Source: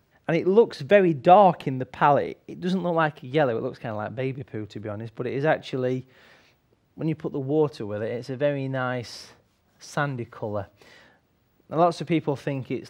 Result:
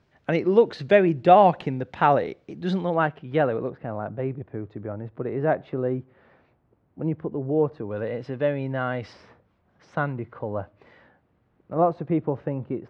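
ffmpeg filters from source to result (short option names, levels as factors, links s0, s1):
-af "asetnsamples=n=441:p=0,asendcmd='2.94 lowpass f 2400;3.7 lowpass f 1300;7.91 lowpass f 3000;9.13 lowpass f 1900;11.73 lowpass f 1100',lowpass=5100"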